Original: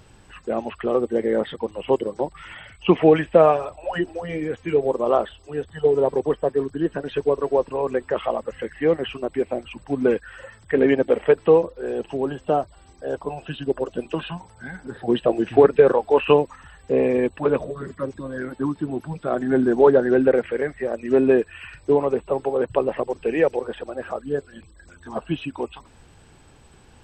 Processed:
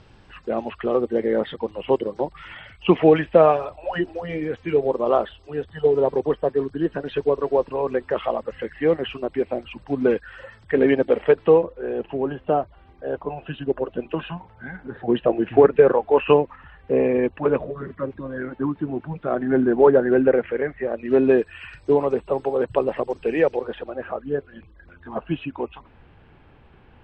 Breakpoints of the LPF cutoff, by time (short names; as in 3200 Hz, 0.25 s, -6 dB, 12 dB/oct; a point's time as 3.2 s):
LPF 24 dB/oct
11.27 s 5300 Hz
11.68 s 2900 Hz
20.83 s 2900 Hz
21.47 s 6400 Hz
23.36 s 6400 Hz
24.06 s 2900 Hz